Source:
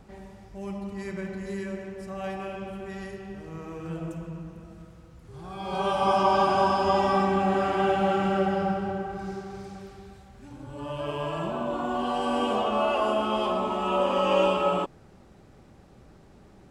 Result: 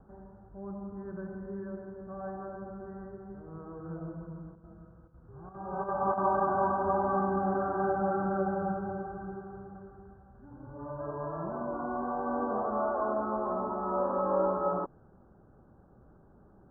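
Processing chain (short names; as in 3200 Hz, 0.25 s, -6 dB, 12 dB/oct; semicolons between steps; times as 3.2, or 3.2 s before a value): steep low-pass 1600 Hz 96 dB/oct; 4.31–6.4 chopper 1.5 Hz -> 4.1 Hz, depth 60%, duty 85%; gain -5.5 dB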